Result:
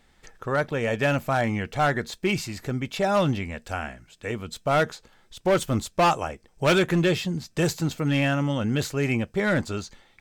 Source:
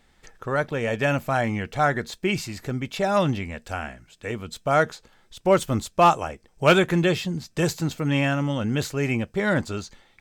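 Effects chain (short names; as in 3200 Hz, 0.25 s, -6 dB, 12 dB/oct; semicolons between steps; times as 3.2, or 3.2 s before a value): hard clip -15.5 dBFS, distortion -12 dB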